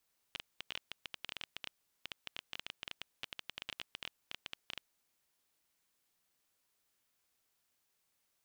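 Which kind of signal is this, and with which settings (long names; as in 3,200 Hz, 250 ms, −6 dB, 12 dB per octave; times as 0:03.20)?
Geiger counter clicks 12 per second −23.5 dBFS 4.87 s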